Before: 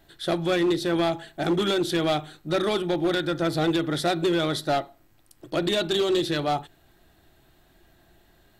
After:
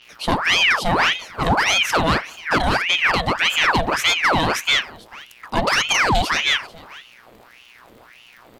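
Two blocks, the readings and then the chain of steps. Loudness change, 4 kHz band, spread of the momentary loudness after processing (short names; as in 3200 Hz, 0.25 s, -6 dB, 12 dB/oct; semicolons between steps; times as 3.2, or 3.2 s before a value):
+7.0 dB, +10.5 dB, 7 LU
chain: gate with hold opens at -50 dBFS; crackle 73/s -47 dBFS; buzz 120 Hz, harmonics 27, -56 dBFS -5 dB/oct; on a send: echo 0.442 s -21 dB; on the sum: ring modulator with a swept carrier 1600 Hz, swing 80%, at 1.7 Hz; gain +8.5 dB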